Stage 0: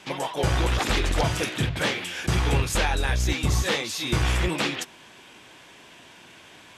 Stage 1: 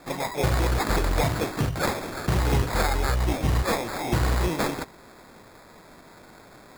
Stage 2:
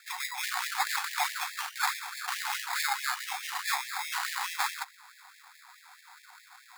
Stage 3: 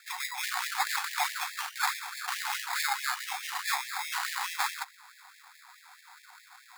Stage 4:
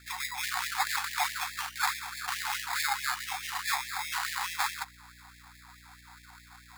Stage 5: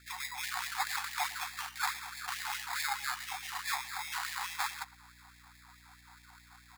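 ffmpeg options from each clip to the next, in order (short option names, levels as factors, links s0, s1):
-af "acrusher=samples=15:mix=1:aa=0.000001"
-af "afftfilt=real='re*gte(b*sr/1024,690*pow(1700/690,0.5+0.5*sin(2*PI*4.7*pts/sr)))':imag='im*gte(b*sr/1024,690*pow(1700/690,0.5+0.5*sin(2*PI*4.7*pts/sr)))':win_size=1024:overlap=0.75"
-af anull
-af "aeval=exprs='val(0)+0.00141*(sin(2*PI*60*n/s)+sin(2*PI*2*60*n/s)/2+sin(2*PI*3*60*n/s)/3+sin(2*PI*4*60*n/s)/4+sin(2*PI*5*60*n/s)/5)':c=same"
-filter_complex "[0:a]asplit=2[s0][s1];[s1]adelay=110,highpass=300,lowpass=3400,asoftclip=type=hard:threshold=0.0668,volume=0.112[s2];[s0][s2]amix=inputs=2:normalize=0,volume=0.596"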